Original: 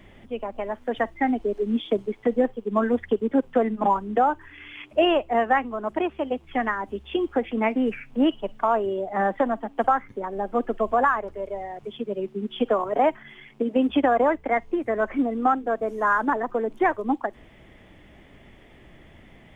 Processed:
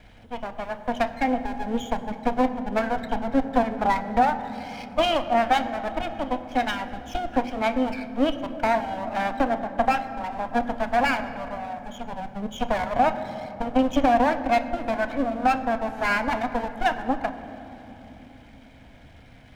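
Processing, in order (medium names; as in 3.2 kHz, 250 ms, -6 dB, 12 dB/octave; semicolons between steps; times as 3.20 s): comb filter that takes the minimum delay 1.3 ms; on a send: reverberation RT60 3.5 s, pre-delay 3 ms, DRR 8 dB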